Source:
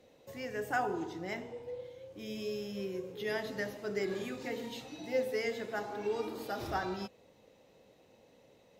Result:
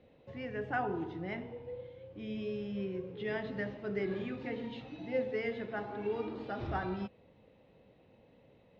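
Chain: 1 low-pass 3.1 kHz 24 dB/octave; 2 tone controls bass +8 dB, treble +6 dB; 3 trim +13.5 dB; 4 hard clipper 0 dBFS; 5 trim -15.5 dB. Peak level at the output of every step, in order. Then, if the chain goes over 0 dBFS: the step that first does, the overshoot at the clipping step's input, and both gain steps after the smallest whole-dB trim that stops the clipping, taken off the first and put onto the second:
-19.5 dBFS, -19.5 dBFS, -6.0 dBFS, -6.0 dBFS, -21.5 dBFS; nothing clips

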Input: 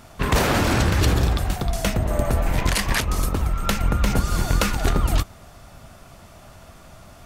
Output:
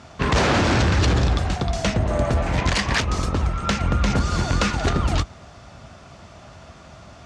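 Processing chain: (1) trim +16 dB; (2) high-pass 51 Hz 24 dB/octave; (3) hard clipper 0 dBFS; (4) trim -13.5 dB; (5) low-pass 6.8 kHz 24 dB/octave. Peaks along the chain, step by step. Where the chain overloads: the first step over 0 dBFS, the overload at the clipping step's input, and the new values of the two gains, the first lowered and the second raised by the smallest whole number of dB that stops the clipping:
+8.0 dBFS, +9.0 dBFS, 0.0 dBFS, -13.5 dBFS, -11.0 dBFS; step 1, 9.0 dB; step 1 +7 dB, step 4 -4.5 dB

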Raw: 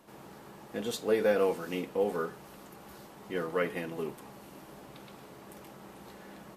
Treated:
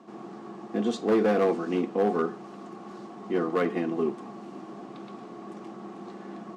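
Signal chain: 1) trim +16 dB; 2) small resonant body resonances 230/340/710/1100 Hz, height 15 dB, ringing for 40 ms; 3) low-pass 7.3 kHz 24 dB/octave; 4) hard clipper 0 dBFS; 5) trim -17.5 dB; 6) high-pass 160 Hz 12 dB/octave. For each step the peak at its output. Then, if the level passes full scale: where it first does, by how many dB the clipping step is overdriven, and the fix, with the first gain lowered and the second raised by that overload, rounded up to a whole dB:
+2.5 dBFS, +9.0 dBFS, +9.0 dBFS, 0.0 dBFS, -17.5 dBFS, -13.0 dBFS; step 1, 9.0 dB; step 1 +7 dB, step 5 -8.5 dB

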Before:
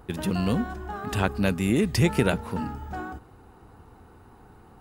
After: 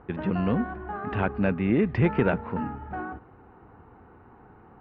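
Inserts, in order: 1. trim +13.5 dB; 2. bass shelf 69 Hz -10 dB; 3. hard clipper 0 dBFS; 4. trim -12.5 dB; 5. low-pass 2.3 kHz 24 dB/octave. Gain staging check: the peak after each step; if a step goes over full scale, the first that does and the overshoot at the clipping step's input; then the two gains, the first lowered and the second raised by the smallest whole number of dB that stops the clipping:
+8.0 dBFS, +7.5 dBFS, 0.0 dBFS, -12.5 dBFS, -11.5 dBFS; step 1, 7.5 dB; step 1 +5.5 dB, step 4 -4.5 dB

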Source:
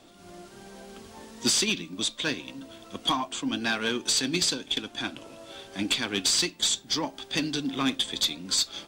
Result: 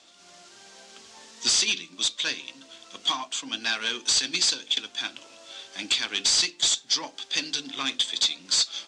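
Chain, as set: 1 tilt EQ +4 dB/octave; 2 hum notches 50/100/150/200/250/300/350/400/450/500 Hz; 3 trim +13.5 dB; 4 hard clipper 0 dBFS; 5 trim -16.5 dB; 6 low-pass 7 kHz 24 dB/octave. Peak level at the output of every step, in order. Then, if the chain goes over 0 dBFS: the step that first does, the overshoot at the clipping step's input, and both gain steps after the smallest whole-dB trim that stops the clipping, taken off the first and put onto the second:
-4.5 dBFS, -4.5 dBFS, +9.0 dBFS, 0.0 dBFS, -16.5 dBFS, -14.5 dBFS; step 3, 9.0 dB; step 3 +4.5 dB, step 5 -7.5 dB

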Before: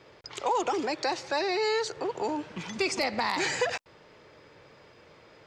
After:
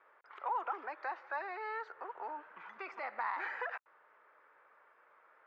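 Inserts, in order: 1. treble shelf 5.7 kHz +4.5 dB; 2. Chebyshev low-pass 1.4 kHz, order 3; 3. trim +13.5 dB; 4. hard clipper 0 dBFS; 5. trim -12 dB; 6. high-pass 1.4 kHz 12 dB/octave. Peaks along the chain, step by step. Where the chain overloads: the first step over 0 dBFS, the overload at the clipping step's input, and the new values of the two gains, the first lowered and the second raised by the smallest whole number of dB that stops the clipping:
-15.0 dBFS, -17.0 dBFS, -3.5 dBFS, -3.5 dBFS, -15.5 dBFS, -25.0 dBFS; nothing clips

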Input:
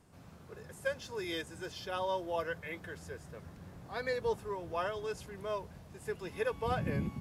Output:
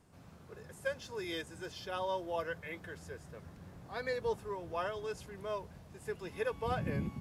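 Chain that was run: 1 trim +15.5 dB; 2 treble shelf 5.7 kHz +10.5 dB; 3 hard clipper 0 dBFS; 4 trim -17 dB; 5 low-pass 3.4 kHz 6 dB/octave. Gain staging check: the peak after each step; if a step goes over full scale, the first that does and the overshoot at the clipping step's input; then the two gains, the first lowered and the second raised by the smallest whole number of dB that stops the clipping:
-5.5 dBFS, -5.0 dBFS, -5.0 dBFS, -22.0 dBFS, -22.5 dBFS; nothing clips

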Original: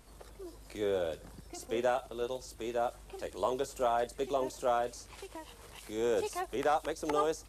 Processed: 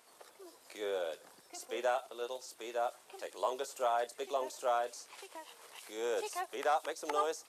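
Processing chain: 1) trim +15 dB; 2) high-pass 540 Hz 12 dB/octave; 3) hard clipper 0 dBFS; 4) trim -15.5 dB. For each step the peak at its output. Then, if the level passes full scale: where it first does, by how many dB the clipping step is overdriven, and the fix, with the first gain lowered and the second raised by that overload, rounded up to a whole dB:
-3.0 dBFS, -4.5 dBFS, -4.5 dBFS, -20.0 dBFS; nothing clips

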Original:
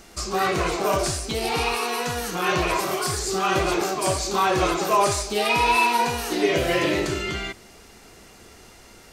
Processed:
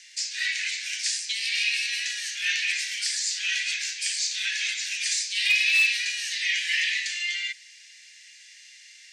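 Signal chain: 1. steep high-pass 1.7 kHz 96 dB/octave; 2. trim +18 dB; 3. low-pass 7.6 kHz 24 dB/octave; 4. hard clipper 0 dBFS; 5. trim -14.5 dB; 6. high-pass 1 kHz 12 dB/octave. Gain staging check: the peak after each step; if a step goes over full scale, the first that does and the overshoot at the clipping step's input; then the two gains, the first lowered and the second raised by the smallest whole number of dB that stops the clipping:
-13.5 dBFS, +4.5 dBFS, +4.0 dBFS, 0.0 dBFS, -14.5 dBFS, -12.0 dBFS; step 2, 4.0 dB; step 2 +14 dB, step 5 -10.5 dB

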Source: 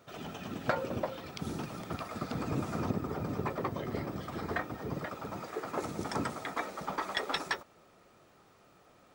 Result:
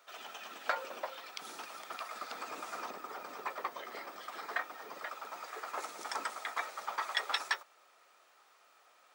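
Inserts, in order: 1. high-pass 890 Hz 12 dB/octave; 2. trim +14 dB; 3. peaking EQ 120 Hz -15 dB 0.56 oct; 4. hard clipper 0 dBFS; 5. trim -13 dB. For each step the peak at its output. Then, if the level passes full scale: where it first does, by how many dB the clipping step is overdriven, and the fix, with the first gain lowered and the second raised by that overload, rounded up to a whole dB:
-17.0 dBFS, -3.0 dBFS, -3.0 dBFS, -3.0 dBFS, -16.0 dBFS; nothing clips

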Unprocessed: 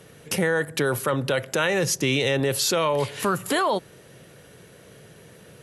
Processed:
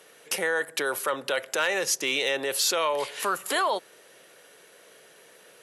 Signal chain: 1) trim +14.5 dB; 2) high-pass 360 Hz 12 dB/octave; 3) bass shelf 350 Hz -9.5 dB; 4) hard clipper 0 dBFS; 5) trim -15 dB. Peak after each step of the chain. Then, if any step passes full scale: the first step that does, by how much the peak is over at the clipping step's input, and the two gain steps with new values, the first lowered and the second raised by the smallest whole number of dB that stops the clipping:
+6.5 dBFS, +5.0 dBFS, +4.5 dBFS, 0.0 dBFS, -15.0 dBFS; step 1, 4.5 dB; step 1 +9.5 dB, step 5 -10 dB

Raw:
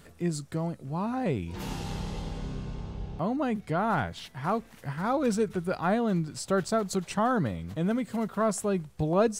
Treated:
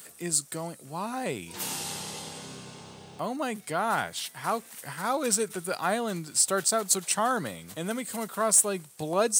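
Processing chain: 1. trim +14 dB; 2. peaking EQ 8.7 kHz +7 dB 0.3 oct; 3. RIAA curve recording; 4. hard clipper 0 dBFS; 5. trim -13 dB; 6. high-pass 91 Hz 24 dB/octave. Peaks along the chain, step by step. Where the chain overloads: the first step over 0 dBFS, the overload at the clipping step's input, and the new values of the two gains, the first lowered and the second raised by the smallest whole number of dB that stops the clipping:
+0.5 dBFS, +0.5 dBFS, +8.0 dBFS, 0.0 dBFS, -13.0 dBFS, -12.0 dBFS; step 1, 8.0 dB; step 1 +6 dB, step 5 -5 dB

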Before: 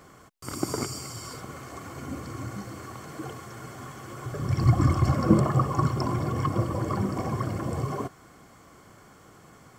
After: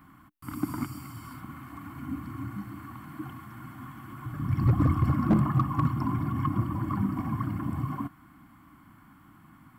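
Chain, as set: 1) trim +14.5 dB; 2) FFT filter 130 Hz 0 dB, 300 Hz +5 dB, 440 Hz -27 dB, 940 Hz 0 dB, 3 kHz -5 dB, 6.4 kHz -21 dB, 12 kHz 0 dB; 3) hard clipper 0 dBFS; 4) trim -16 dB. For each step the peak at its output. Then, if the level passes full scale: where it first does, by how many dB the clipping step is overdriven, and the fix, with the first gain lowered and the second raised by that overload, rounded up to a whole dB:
+9.5 dBFS, +10.0 dBFS, 0.0 dBFS, -16.0 dBFS; step 1, 10.0 dB; step 1 +4.5 dB, step 4 -6 dB

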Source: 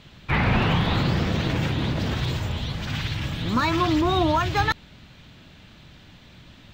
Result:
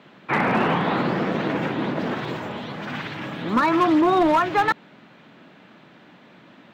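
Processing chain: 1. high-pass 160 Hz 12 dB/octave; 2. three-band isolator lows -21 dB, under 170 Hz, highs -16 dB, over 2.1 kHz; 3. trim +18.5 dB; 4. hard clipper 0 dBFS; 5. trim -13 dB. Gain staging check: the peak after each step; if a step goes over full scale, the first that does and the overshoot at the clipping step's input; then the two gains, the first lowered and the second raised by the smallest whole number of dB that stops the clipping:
-11.0 dBFS, -12.0 dBFS, +6.5 dBFS, 0.0 dBFS, -13.0 dBFS; step 3, 6.5 dB; step 3 +11.5 dB, step 5 -6 dB

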